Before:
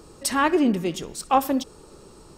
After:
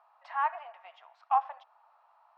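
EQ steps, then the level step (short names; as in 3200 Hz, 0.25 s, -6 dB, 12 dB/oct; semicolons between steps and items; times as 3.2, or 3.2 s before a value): rippled Chebyshev high-pass 660 Hz, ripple 3 dB; LPF 1200 Hz 12 dB/oct; air absorption 170 m; -1.5 dB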